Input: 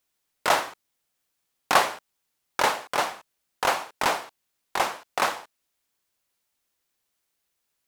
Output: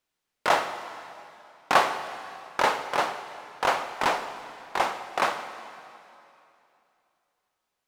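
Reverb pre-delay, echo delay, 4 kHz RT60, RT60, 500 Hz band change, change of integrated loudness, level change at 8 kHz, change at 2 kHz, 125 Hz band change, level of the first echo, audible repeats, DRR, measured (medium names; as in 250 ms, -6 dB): 5 ms, no echo, 2.6 s, 2.9 s, +0.5 dB, -1.0 dB, -6.0 dB, -0.5 dB, -0.5 dB, no echo, no echo, 8.5 dB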